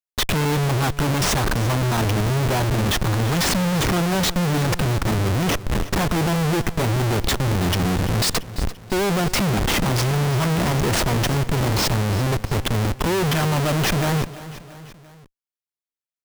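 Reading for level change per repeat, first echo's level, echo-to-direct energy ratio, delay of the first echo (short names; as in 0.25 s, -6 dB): -5.0 dB, -16.0 dB, -14.5 dB, 0.34 s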